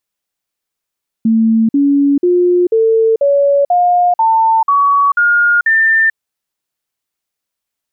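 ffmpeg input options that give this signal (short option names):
-f lavfi -i "aevalsrc='0.422*clip(min(mod(t,0.49),0.44-mod(t,0.49))/0.005,0,1)*sin(2*PI*224*pow(2,floor(t/0.49)/3)*mod(t,0.49))':d=4.9:s=44100"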